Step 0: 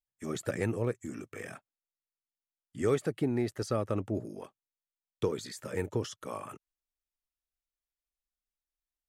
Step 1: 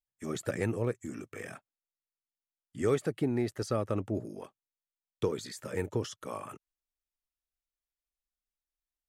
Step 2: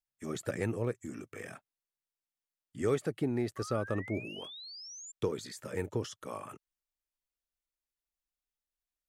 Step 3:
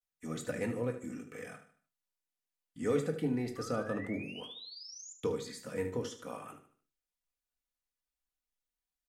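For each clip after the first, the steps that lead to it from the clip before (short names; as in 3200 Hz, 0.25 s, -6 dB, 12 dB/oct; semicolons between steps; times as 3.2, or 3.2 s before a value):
nothing audible
painted sound rise, 3.56–5.12, 1100–7400 Hz -45 dBFS; gain -2 dB
vibrato 0.37 Hz 51 cents; feedback echo 75 ms, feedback 38%, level -11.5 dB; on a send at -2.5 dB: reverb, pre-delay 4 ms; on the sum: gain -3.5 dB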